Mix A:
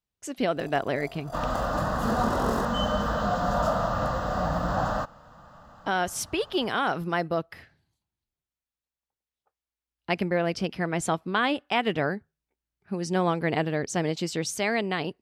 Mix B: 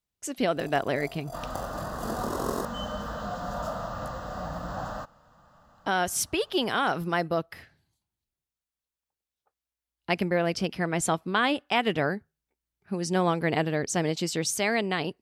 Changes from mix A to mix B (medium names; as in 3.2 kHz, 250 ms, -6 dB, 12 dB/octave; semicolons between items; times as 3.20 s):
second sound -8.0 dB; master: add treble shelf 6.5 kHz +7 dB